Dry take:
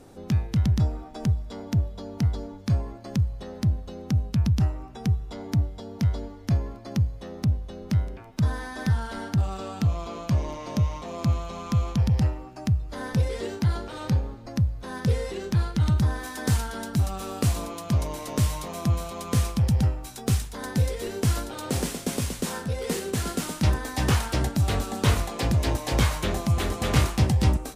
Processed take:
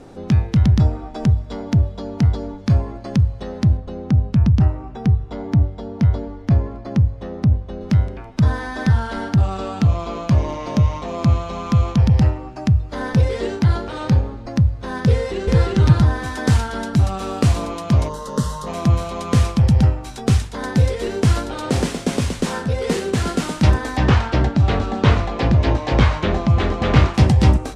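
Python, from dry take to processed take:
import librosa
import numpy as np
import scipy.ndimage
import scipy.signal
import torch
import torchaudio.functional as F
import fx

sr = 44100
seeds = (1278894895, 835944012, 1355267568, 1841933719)

y = fx.high_shelf(x, sr, hz=2800.0, db=-9.0, at=(3.77, 7.81))
y = fx.echo_throw(y, sr, start_s=15.12, length_s=0.55, ms=350, feedback_pct=15, wet_db=-0.5)
y = fx.fixed_phaser(y, sr, hz=470.0, stages=8, at=(18.08, 18.66), fade=0.02)
y = fx.air_absorb(y, sr, metres=130.0, at=(23.96, 27.13), fade=0.02)
y = scipy.signal.sosfilt(scipy.signal.butter(2, 9800.0, 'lowpass', fs=sr, output='sos'), y)
y = fx.high_shelf(y, sr, hz=6100.0, db=-10.0)
y = fx.hum_notches(y, sr, base_hz=50, count=2)
y = F.gain(torch.from_numpy(y), 8.5).numpy()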